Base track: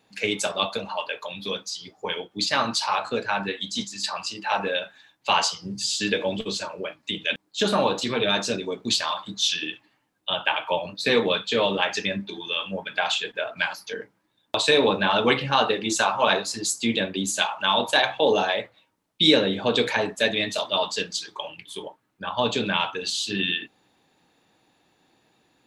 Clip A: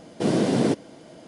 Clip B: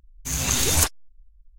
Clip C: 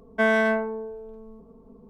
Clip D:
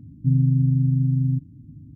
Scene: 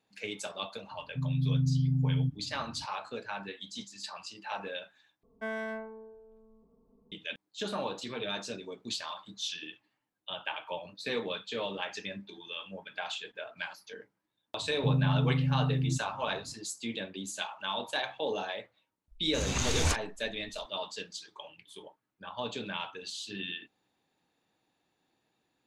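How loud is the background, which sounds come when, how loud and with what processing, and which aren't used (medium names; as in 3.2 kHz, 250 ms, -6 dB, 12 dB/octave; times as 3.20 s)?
base track -13 dB
0.91 s: add D -16 dB + level rider gain up to 11 dB
5.23 s: replace with C -15.5 dB
14.59 s: add D -3.5 dB + bass shelf 400 Hz -6 dB
19.08 s: add B -5 dB + distance through air 93 m
not used: A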